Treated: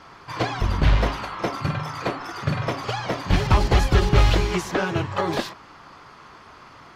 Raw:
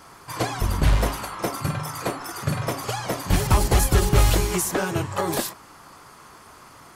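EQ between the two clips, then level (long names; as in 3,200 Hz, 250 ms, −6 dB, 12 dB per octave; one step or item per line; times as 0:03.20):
high-frequency loss of the air 240 metres
high-shelf EQ 2,400 Hz +9.5 dB
+1.0 dB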